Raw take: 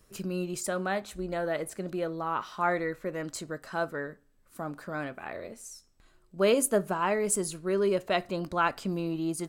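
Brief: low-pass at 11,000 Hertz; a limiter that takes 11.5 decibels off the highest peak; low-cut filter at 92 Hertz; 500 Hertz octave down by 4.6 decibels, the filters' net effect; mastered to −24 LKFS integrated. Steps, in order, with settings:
high-pass filter 92 Hz
low-pass filter 11,000 Hz
parametric band 500 Hz −6 dB
level +12 dB
brickwall limiter −12.5 dBFS

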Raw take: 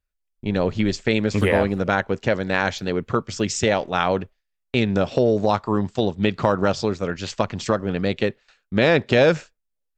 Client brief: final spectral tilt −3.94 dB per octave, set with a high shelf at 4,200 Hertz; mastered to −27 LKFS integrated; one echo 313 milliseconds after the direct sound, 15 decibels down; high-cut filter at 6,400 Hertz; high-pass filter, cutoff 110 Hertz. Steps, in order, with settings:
high-pass filter 110 Hz
low-pass filter 6,400 Hz
high-shelf EQ 4,200 Hz +7 dB
single-tap delay 313 ms −15 dB
level −5.5 dB

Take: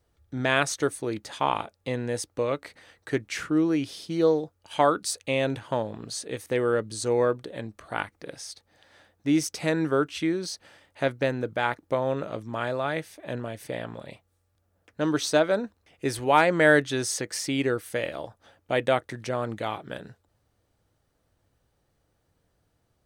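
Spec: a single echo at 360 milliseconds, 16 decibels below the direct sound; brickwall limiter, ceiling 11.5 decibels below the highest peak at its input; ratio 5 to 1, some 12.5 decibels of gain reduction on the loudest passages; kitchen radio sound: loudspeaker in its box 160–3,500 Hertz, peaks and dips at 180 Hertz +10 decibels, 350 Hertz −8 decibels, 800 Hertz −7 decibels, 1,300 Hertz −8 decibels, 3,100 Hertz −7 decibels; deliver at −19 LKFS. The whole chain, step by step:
downward compressor 5 to 1, threshold −29 dBFS
brickwall limiter −25 dBFS
loudspeaker in its box 160–3,500 Hz, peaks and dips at 180 Hz +10 dB, 350 Hz −8 dB, 800 Hz −7 dB, 1,300 Hz −8 dB, 3,100 Hz −7 dB
single-tap delay 360 ms −16 dB
level +21 dB

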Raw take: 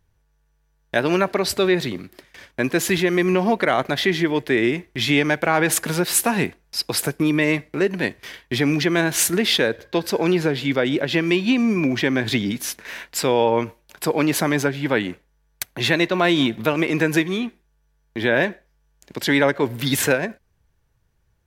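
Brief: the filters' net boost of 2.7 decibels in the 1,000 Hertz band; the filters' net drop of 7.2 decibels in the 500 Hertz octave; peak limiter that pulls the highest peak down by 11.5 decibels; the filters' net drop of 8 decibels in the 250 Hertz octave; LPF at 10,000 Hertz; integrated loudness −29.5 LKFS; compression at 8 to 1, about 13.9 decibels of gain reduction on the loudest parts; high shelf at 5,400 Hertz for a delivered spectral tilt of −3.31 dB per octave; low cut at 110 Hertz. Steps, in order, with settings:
high-pass filter 110 Hz
low-pass filter 10,000 Hz
parametric band 250 Hz −8 dB
parametric band 500 Hz −8.5 dB
parametric band 1,000 Hz +7 dB
high-shelf EQ 5,400 Hz −5 dB
downward compressor 8 to 1, threshold −29 dBFS
level +6 dB
brickwall limiter −18.5 dBFS

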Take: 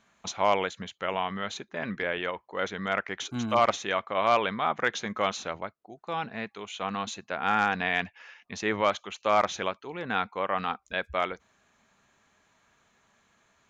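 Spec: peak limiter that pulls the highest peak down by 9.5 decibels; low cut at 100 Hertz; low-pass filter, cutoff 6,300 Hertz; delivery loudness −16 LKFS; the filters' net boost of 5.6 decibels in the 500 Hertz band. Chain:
high-pass filter 100 Hz
low-pass filter 6,300 Hz
parametric band 500 Hz +7 dB
level +15.5 dB
brickwall limiter −2 dBFS

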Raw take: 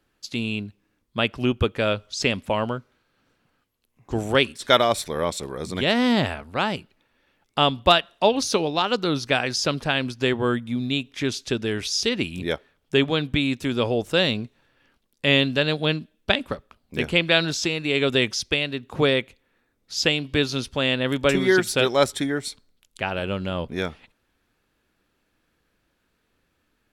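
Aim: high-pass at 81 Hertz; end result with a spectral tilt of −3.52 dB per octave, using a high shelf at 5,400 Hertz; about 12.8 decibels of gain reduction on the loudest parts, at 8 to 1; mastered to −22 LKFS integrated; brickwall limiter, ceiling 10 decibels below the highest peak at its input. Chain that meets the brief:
high-pass filter 81 Hz
high-shelf EQ 5,400 Hz +7.5 dB
downward compressor 8 to 1, threshold −25 dBFS
level +9.5 dB
brickwall limiter −9.5 dBFS

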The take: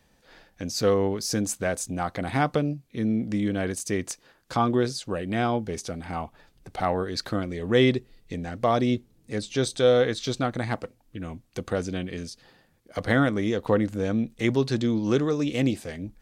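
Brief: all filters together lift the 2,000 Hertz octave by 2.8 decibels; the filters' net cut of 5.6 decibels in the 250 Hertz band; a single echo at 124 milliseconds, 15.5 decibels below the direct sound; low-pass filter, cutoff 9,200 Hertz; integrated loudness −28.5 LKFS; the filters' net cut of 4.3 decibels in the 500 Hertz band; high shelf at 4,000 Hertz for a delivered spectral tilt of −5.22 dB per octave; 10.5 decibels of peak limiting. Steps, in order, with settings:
low-pass filter 9,200 Hz
parametric band 250 Hz −6 dB
parametric band 500 Hz −3.5 dB
parametric band 2,000 Hz +5 dB
high-shelf EQ 4,000 Hz −6 dB
brickwall limiter −19.5 dBFS
single-tap delay 124 ms −15.5 dB
level +3.5 dB

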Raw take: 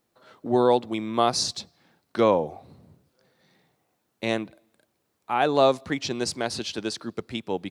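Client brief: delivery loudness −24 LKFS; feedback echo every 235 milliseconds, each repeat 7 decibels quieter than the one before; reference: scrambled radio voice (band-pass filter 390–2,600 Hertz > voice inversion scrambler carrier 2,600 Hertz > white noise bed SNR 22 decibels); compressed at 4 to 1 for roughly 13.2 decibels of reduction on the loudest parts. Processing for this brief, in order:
downward compressor 4 to 1, threshold −31 dBFS
band-pass filter 390–2,600 Hz
repeating echo 235 ms, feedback 45%, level −7 dB
voice inversion scrambler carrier 2,600 Hz
white noise bed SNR 22 dB
level +11.5 dB

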